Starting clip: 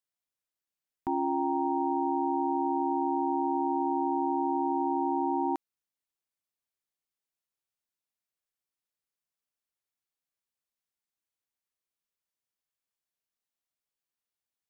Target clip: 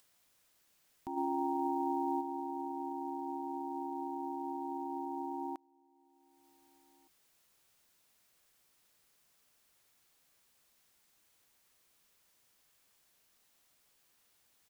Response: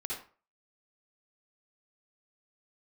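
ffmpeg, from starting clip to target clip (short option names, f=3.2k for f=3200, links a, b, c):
-filter_complex "[0:a]acompressor=mode=upward:threshold=-43dB:ratio=2.5,alimiter=level_in=1dB:limit=-24dB:level=0:latency=1:release=103,volume=-1dB,asplit=3[a][b][c];[a]afade=t=out:st=1.16:d=0.02[d];[b]acontrast=40,afade=t=in:st=1.16:d=0.02,afade=t=out:st=2.2:d=0.02[e];[c]afade=t=in:st=2.2:d=0.02[f];[d][e][f]amix=inputs=3:normalize=0,acrusher=bits=9:mode=log:mix=0:aa=0.000001,asplit=2[g][h];[h]adelay=1516,volume=-28dB,highshelf=f=4k:g=-34.1[i];[g][i]amix=inputs=2:normalize=0,volume=-6.5dB"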